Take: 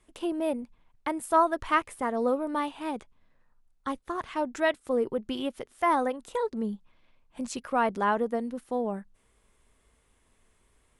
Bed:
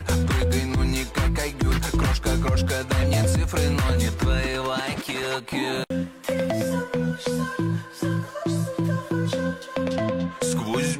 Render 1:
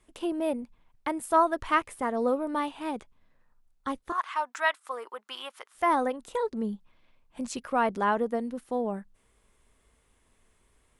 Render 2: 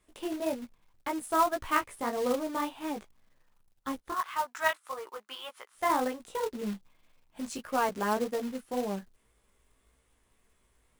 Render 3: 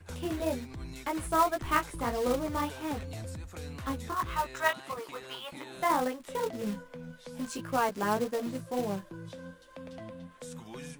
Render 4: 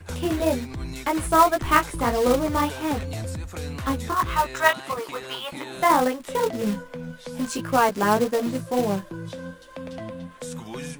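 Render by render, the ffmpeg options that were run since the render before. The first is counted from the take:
-filter_complex "[0:a]asettb=1/sr,asplit=3[s0][s1][s2];[s0]atrim=end=4.124[s3];[s1]atrim=start=4.12:end=5.75,asetpts=PTS-STARTPTS,afade=t=in:d=0.004:c=qsin,afade=t=out:st=1.626:d=0.004:c=qsin,highpass=f=1100:t=q:w=2.3[s4];[s2]atrim=start=5.746[s5];[s3][s4]acrossfade=d=0.004:c1=hsin:c2=qsin[s6];[s6][s5]acrossfade=d=0.004:c1=qsin:c2=hsin"
-af "flanger=delay=15:depth=4.3:speed=1.8,acrusher=bits=3:mode=log:mix=0:aa=0.000001"
-filter_complex "[1:a]volume=0.106[s0];[0:a][s0]amix=inputs=2:normalize=0"
-af "volume=2.82"

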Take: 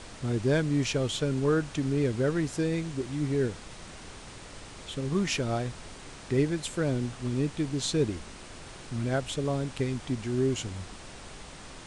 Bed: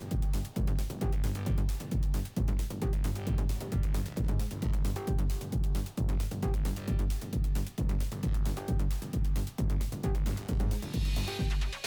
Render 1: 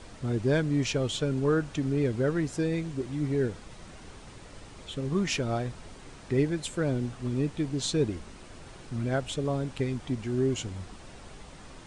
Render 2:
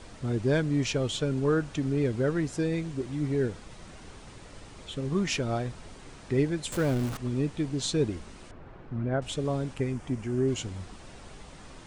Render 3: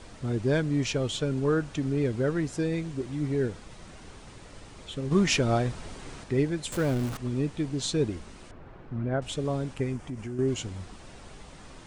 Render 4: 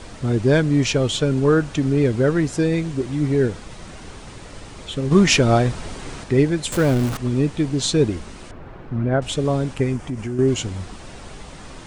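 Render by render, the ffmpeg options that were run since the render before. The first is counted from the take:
-af "afftdn=nr=6:nf=-46"
-filter_complex "[0:a]asettb=1/sr,asplit=3[s0][s1][s2];[s0]atrim=end=6.724[s3];[s1]atrim=start=6.72:end=7.17,asetpts=PTS-STARTPTS,afade=t=in:d=0.004:c=qsin,afade=t=out:st=0.446:d=0.004:c=qsin,aeval=exprs='val(0)+0.5*0.0237*sgn(val(0))':c=same[s4];[s2]atrim=start=7.166[s5];[s3][s4]acrossfade=d=0.004:c1=hsin:c2=qsin[s6];[s6][s5]acrossfade=d=0.004:c1=qsin:c2=hsin,asettb=1/sr,asplit=3[s7][s8][s9];[s7]atrim=end=8.514[s10];[s8]atrim=start=8.51:end=9.22,asetpts=PTS-STARTPTS,afade=t=in:d=0.004:c=qsin,afade=t=out:st=0.706:d=0.004:c=qsin,lowpass=1600[s11];[s9]atrim=start=9.216[s12];[s10][s11]acrossfade=d=0.004:c1=hsin:c2=qsin[s13];[s13][s12]acrossfade=d=0.004:c1=qsin:c2=hsin,asettb=1/sr,asplit=3[s14][s15][s16];[s14]atrim=end=9.744[s17];[s15]atrim=start=9.74:end=10.48,asetpts=PTS-STARTPTS,afade=t=in:d=0.004:c=qsin,afade=t=out:st=0.736:d=0.004:c=qsin,equalizer=f=3900:t=o:w=0.59:g=-10[s18];[s16]atrim=start=10.476[s19];[s17][s18]acrossfade=d=0.004:c1=hsin:c2=qsin[s20];[s20][s19]acrossfade=d=0.004:c1=qsin:c2=hsin"
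-filter_complex "[0:a]asettb=1/sr,asplit=3[s0][s1][s2];[s0]atrim=end=5.114[s3];[s1]atrim=start=5.11:end=6.24,asetpts=PTS-STARTPTS,afade=t=in:d=0.004:c=qsin,afade=t=out:st=1.126:d=0.004:c=qsin,acontrast=25[s4];[s2]atrim=start=6.236[s5];[s3][s4]acrossfade=d=0.004:c1=hsin:c2=qsin[s6];[s6][s5]acrossfade=d=0.004:c1=qsin:c2=hsin,asettb=1/sr,asplit=3[s7][s8][s9];[s7]atrim=end=9.964[s10];[s8]atrim=start=9.96:end=10.39,asetpts=PTS-STARTPTS,afade=t=in:d=0.004:c=qsin,afade=t=out:st=0.426:d=0.004:c=qsin,acompressor=threshold=0.0251:ratio=4:attack=3.2:release=140:knee=1:detection=peak[s11];[s9]atrim=start=10.386[s12];[s10][s11]acrossfade=d=0.004:c1=hsin:c2=qsin[s13];[s13][s12]acrossfade=d=0.004:c1=qsin:c2=hsin"
-af "volume=2.82"

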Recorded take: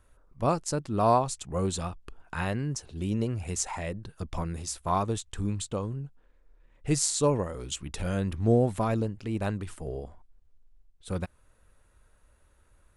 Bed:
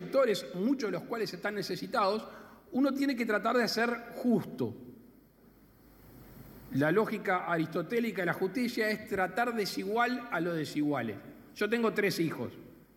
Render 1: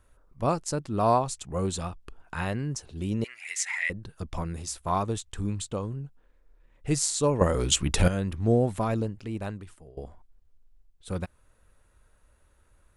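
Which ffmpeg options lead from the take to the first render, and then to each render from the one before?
-filter_complex "[0:a]asettb=1/sr,asplit=3[s0][s1][s2];[s0]atrim=end=3.244[s3];[s1]atrim=start=3.24:end=3.9,asetpts=PTS-STARTPTS,afade=t=in:d=0.004:c=qsin,afade=t=out:st=0.656:d=0.004:c=qsin,highpass=f=2000:t=q:w=7.5[s4];[s2]atrim=start=3.896[s5];[s3][s4]acrossfade=d=0.004:c1=hsin:c2=qsin[s6];[s6][s5]acrossfade=d=0.004:c1=qsin:c2=hsin,asplit=4[s7][s8][s9][s10];[s7]atrim=end=7.412[s11];[s8]atrim=start=7.408:end=8.082,asetpts=PTS-STARTPTS,volume=3.76[s12];[s9]atrim=start=8.078:end=9.97,asetpts=PTS-STARTPTS,afade=t=out:st=1.012:d=0.88:silence=0.1[s13];[s10]atrim=start=9.97,asetpts=PTS-STARTPTS,afade=t=in:d=0.004:c=hsin:silence=0.1[s14];[s11][s12]acrossfade=d=0.004:c1=hsin:c2=hsin[s15];[s13][s14]concat=n=2:v=0:a=1[s16];[s15][s16]acrossfade=d=0.004:c1=hsin:c2=hsin"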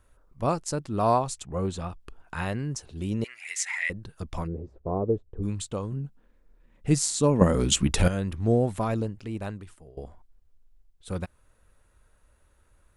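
-filter_complex "[0:a]asettb=1/sr,asplit=3[s0][s1][s2];[s0]atrim=end=1.444[s3];[s1]atrim=start=1.44:end=1.9,asetpts=PTS-STARTPTS,afade=t=in:d=0.004:c=qsin,afade=t=out:st=0.456:d=0.004:c=qsin,lowpass=f=2600:p=1[s4];[s2]atrim=start=1.896[s5];[s3][s4]acrossfade=d=0.004:c1=hsin:c2=qsin[s6];[s6][s5]acrossfade=d=0.004:c1=qsin:c2=hsin,asplit=3[s7][s8][s9];[s7]afade=t=out:st=4.46:d=0.02[s10];[s8]lowpass=f=460:t=q:w=2.9,afade=t=in:st=4.46:d=0.02,afade=t=out:st=5.42:d=0.02[s11];[s9]afade=t=in:st=5.42:d=0.02[s12];[s10][s11][s12]amix=inputs=3:normalize=0,asettb=1/sr,asplit=3[s13][s14][s15];[s13]atrim=end=5.924[s16];[s14]atrim=start=5.92:end=7.87,asetpts=PTS-STARTPTS,afade=t=in:d=0.004:c=qsin,afade=t=out:st=1.946:d=0.004:c=qsin,equalizer=f=210:w=1.7:g=10.5[s17];[s15]atrim=start=7.866[s18];[s16][s17]acrossfade=d=0.004:c1=hsin:c2=qsin[s19];[s19][s18]acrossfade=d=0.004:c1=qsin:c2=hsin"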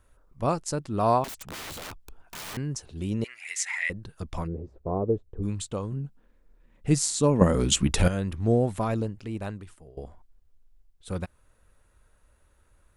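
-filter_complex "[0:a]asettb=1/sr,asplit=3[s0][s1][s2];[s0]atrim=end=1.244[s3];[s1]atrim=start=1.24:end=2.57,asetpts=PTS-STARTPTS,afade=t=in:d=0.004:c=qsin,afade=t=out:st=1.326:d=0.004:c=qsin,aeval=exprs='(mod(47.3*val(0)+1,2)-1)/47.3':c=same[s4];[s2]atrim=start=2.566[s5];[s3][s4]acrossfade=d=0.004:c1=hsin:c2=qsin[s6];[s6][s5]acrossfade=d=0.004:c1=qsin:c2=hsin"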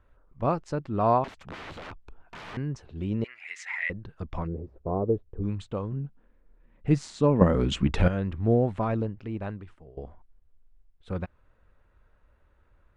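-af "lowpass=2500"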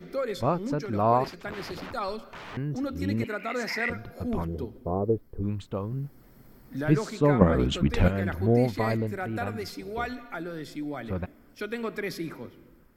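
-filter_complex "[1:a]volume=0.668[s0];[0:a][s0]amix=inputs=2:normalize=0"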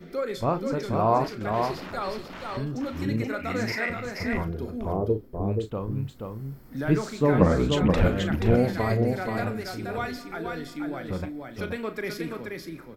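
-filter_complex "[0:a]asplit=2[s0][s1];[s1]adelay=37,volume=0.299[s2];[s0][s2]amix=inputs=2:normalize=0,aecho=1:1:479:0.596"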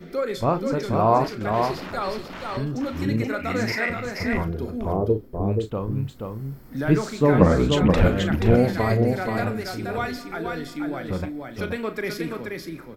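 -af "volume=1.5"

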